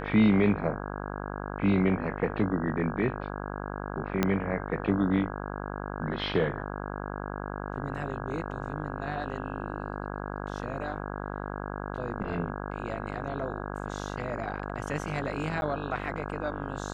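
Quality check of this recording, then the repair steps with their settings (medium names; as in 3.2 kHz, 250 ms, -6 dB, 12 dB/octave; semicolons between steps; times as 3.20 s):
buzz 50 Hz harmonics 33 -36 dBFS
4.23 s: pop -10 dBFS
15.61–15.62 s: dropout 11 ms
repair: de-click; de-hum 50 Hz, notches 33; interpolate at 15.61 s, 11 ms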